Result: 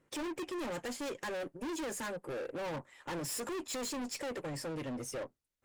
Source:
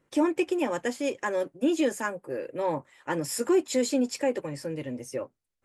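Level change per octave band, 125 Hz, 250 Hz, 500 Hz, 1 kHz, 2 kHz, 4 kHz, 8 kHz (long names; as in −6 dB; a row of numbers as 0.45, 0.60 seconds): −5.0, −12.5, −11.5, −9.0, −8.0, −5.0, −5.0 decibels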